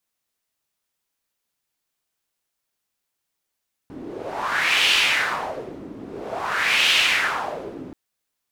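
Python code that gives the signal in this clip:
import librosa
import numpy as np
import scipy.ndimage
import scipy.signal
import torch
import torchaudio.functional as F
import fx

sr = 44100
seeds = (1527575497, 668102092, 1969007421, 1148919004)

y = fx.wind(sr, seeds[0], length_s=4.03, low_hz=280.0, high_hz=2900.0, q=3.0, gusts=2, swing_db=19.0)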